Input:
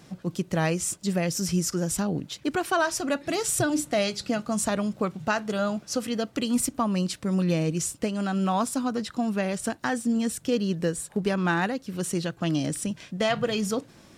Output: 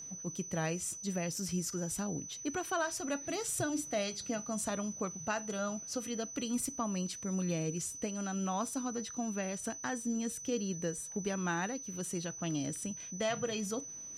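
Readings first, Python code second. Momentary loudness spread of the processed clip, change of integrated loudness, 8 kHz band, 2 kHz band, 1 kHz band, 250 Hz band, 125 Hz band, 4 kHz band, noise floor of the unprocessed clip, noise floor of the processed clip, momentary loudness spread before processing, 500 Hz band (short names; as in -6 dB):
4 LU, -9.0 dB, -4.0 dB, -10.0 dB, -10.0 dB, -10.5 dB, -10.5 dB, -10.0 dB, -53 dBFS, -46 dBFS, 5 LU, -10.0 dB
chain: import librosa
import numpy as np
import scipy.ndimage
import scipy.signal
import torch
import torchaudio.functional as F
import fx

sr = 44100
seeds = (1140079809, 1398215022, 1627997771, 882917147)

y = x + 10.0 ** (-33.0 / 20.0) * np.sin(2.0 * np.pi * 6000.0 * np.arange(len(x)) / sr)
y = fx.comb_fb(y, sr, f0_hz=94.0, decay_s=0.22, harmonics='odd', damping=0.0, mix_pct=40)
y = y * librosa.db_to_amplitude(-6.5)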